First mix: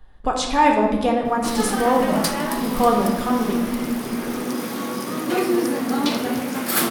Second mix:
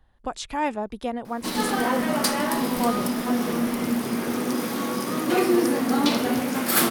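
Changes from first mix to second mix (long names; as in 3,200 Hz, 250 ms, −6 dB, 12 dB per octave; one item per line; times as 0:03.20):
speech −5.0 dB
reverb: off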